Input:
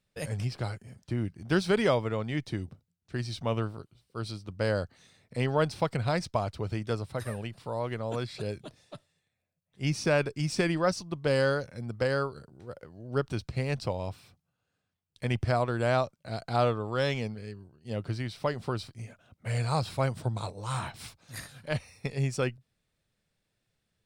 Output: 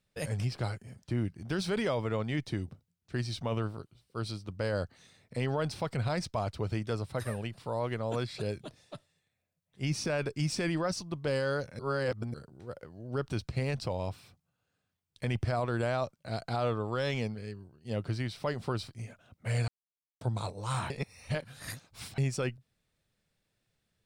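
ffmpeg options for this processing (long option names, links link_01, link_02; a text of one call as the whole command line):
ffmpeg -i in.wav -filter_complex "[0:a]asplit=7[link_01][link_02][link_03][link_04][link_05][link_06][link_07];[link_01]atrim=end=11.792[link_08];[link_02]atrim=start=11.788:end=12.342,asetpts=PTS-STARTPTS,areverse[link_09];[link_03]atrim=start=12.338:end=19.68,asetpts=PTS-STARTPTS,afade=type=out:start_time=7.338:duration=0.004:curve=hsin[link_10];[link_04]atrim=start=19.68:end=20.21,asetpts=PTS-STARTPTS,volume=0[link_11];[link_05]atrim=start=20.21:end=20.902,asetpts=PTS-STARTPTS,afade=type=in:duration=0.004:curve=hsin[link_12];[link_06]atrim=start=20.898:end=22.182,asetpts=PTS-STARTPTS,areverse[link_13];[link_07]atrim=start=22.178[link_14];[link_08][link_09]acrossfade=duration=0.004:curve1=hsin:curve2=hsin[link_15];[link_10][link_11][link_12]concat=n=3:v=0:a=1[link_16];[link_15][link_16]acrossfade=duration=0.004:curve1=hsin:curve2=hsin[link_17];[link_17][link_13]acrossfade=duration=0.004:curve1=hsin:curve2=hsin[link_18];[link_18][link_14]acrossfade=duration=0.004:curve1=hsin:curve2=hsin,alimiter=limit=-22.5dB:level=0:latency=1:release=11" out.wav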